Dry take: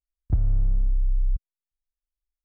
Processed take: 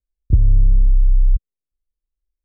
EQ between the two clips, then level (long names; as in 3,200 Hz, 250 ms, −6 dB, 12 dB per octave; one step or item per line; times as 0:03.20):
Butterworth low-pass 590 Hz 72 dB per octave
low-shelf EQ 220 Hz +6 dB
parametric band 410 Hz +3 dB 0.41 octaves
+3.5 dB